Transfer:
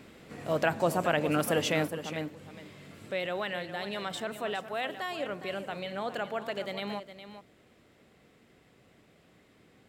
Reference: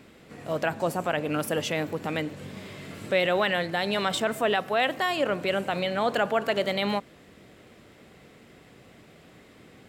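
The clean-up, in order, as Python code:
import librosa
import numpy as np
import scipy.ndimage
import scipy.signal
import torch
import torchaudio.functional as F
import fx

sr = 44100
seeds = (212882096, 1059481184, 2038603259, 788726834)

y = fx.fix_echo_inverse(x, sr, delay_ms=412, level_db=-11.5)
y = fx.fix_level(y, sr, at_s=1.88, step_db=9.5)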